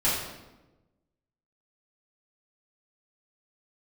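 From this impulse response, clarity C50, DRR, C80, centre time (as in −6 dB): 1.0 dB, −12.0 dB, 4.0 dB, 64 ms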